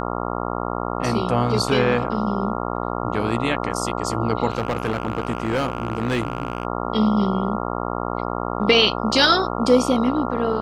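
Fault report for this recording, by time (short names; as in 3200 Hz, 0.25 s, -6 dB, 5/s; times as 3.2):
buzz 60 Hz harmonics 23 -26 dBFS
4.5–6.65 clipped -17 dBFS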